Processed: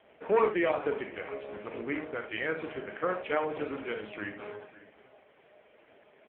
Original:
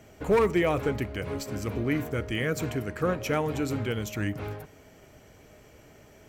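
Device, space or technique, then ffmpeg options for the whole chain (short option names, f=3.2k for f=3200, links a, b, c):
satellite phone: -filter_complex "[0:a]asplit=3[a][b][c];[a]afade=t=out:st=1.21:d=0.02[d];[b]bandreject=f=50:t=h:w=6,bandreject=f=100:t=h:w=6,bandreject=f=150:t=h:w=6,bandreject=f=200:t=h:w=6,bandreject=f=250:t=h:w=6,bandreject=f=300:t=h:w=6,bandreject=f=350:t=h:w=6,bandreject=f=400:t=h:w=6,bandreject=f=450:t=h:w=6,afade=t=in:st=1.21:d=0.02,afade=t=out:st=2.61:d=0.02[e];[c]afade=t=in:st=2.61:d=0.02[f];[d][e][f]amix=inputs=3:normalize=0,highpass=400,lowpass=3.4k,highshelf=f=5.5k:g=3.5,aecho=1:1:38|56|75:0.376|0.251|0.282,aecho=1:1:546:0.126" -ar 8000 -c:a libopencore_amrnb -b:a 5150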